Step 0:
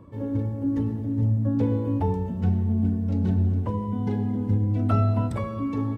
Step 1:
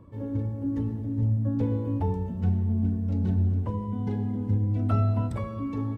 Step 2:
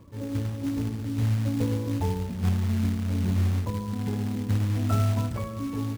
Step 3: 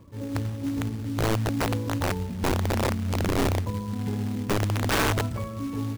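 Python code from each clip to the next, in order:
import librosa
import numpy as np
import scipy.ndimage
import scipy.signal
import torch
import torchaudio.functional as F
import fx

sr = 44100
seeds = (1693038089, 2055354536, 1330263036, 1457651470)

y1 = fx.low_shelf(x, sr, hz=78.0, db=7.5)
y1 = y1 * 10.0 ** (-4.5 / 20.0)
y2 = fx.quant_float(y1, sr, bits=2)
y3 = (np.mod(10.0 ** (18.5 / 20.0) * y2 + 1.0, 2.0) - 1.0) / 10.0 ** (18.5 / 20.0)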